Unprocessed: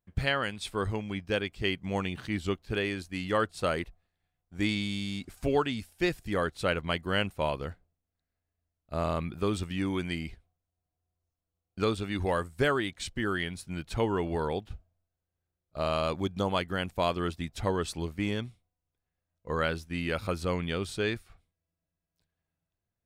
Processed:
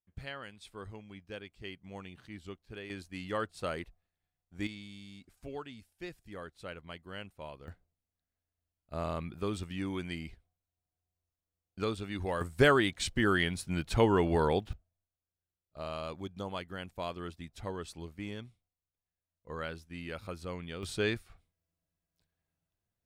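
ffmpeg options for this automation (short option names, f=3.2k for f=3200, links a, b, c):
-af "asetnsamples=n=441:p=0,asendcmd='2.9 volume volume -7dB;4.67 volume volume -15.5dB;7.68 volume volume -5.5dB;12.41 volume volume 3dB;14.73 volume volume -10dB;20.83 volume volume -1dB',volume=-14.5dB"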